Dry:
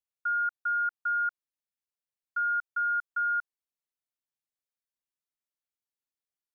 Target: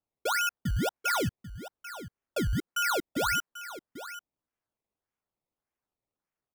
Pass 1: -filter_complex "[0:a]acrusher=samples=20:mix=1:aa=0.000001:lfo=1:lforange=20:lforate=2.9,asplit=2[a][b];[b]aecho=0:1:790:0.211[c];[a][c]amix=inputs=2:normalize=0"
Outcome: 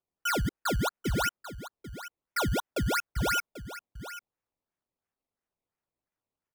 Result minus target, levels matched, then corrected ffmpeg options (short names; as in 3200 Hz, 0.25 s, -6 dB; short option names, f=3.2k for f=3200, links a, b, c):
decimation with a swept rate: distortion +8 dB
-filter_complex "[0:a]acrusher=samples=20:mix=1:aa=0.000001:lfo=1:lforange=20:lforate=1.7,asplit=2[a][b];[b]aecho=0:1:790:0.211[c];[a][c]amix=inputs=2:normalize=0"